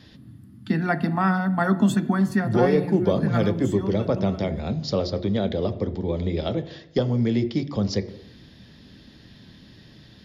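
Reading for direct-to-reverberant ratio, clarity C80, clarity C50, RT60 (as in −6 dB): 9.0 dB, 17.0 dB, 15.0 dB, 0.80 s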